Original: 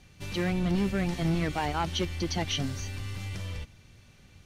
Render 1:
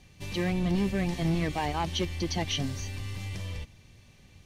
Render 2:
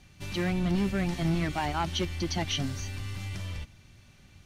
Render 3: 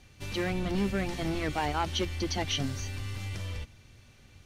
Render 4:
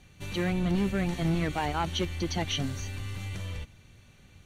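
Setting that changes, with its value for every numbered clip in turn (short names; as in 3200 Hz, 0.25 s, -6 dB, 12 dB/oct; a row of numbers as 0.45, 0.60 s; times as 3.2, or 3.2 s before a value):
notch, frequency: 1400, 470, 170, 5100 Hz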